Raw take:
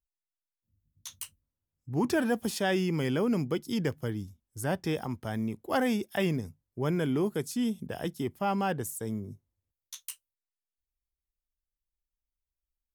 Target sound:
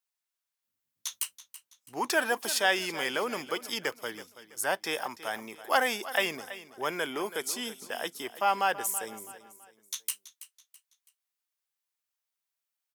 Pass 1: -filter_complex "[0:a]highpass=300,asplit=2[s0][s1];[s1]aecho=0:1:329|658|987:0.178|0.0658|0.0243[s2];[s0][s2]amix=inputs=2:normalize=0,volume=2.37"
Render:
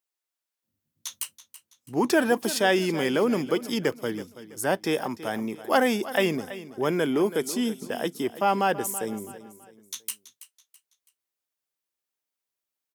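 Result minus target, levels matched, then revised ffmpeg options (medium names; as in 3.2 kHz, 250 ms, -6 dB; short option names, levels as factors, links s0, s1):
250 Hz band +10.0 dB
-filter_complex "[0:a]highpass=800,asplit=2[s0][s1];[s1]aecho=0:1:329|658|987:0.178|0.0658|0.0243[s2];[s0][s2]amix=inputs=2:normalize=0,volume=2.37"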